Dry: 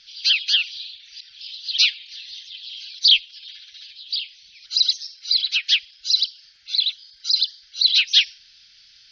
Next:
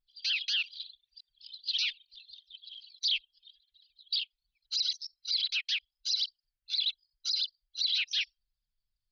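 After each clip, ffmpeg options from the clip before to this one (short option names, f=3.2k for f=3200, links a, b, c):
-filter_complex "[0:a]anlmdn=25.1,acrossover=split=2700[a][b];[b]acompressor=threshold=-20dB:ratio=4:attack=1:release=60[c];[a][c]amix=inputs=2:normalize=0,alimiter=limit=-18.5dB:level=0:latency=1:release=46,volume=-4dB"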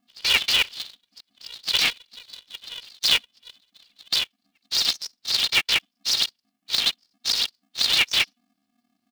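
-af "equalizer=f=2.6k:t=o:w=0.35:g=4,aecho=1:1:1.6:0.51,aeval=exprs='val(0)*sgn(sin(2*PI*240*n/s))':c=same,volume=7.5dB"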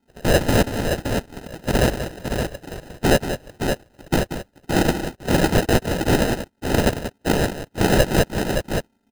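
-filter_complex "[0:a]acrusher=samples=39:mix=1:aa=0.000001,asplit=2[a][b];[b]aecho=0:1:184|569:0.316|0.501[c];[a][c]amix=inputs=2:normalize=0,volume=4dB"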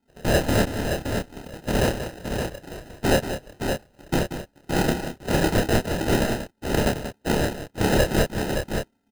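-filter_complex "[0:a]asplit=2[a][b];[b]adelay=28,volume=-4dB[c];[a][c]amix=inputs=2:normalize=0,volume=-4.5dB"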